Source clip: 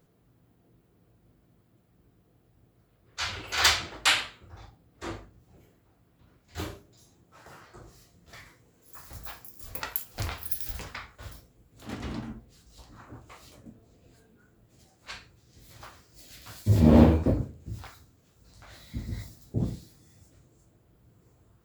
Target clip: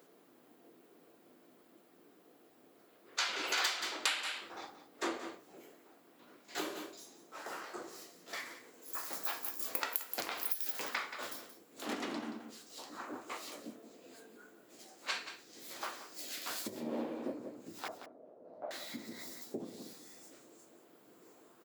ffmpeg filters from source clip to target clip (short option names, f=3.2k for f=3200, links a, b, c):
-filter_complex "[0:a]asettb=1/sr,asplit=3[a][b][c];[a]atrim=end=17.884[d];[b]atrim=start=17.88:end=18.71,asetpts=PTS-STARTPTS,afade=t=in:d=0.004:c=qsin,afade=t=out:st=0.826:d=0.004:c=qsin,lowpass=f=620:t=q:w=4.9[e];[c]atrim=start=18.706[f];[d][e]acrossfade=d=0.004:c1=hsin:c2=qsin[g];[g][f]acrossfade=d=0.004:c1=qsin:c2=hsin,aecho=1:1:177:0.224,acompressor=threshold=-38dB:ratio=8,highpass=f=270:w=0.5412,highpass=f=270:w=1.3066,volume=6.5dB"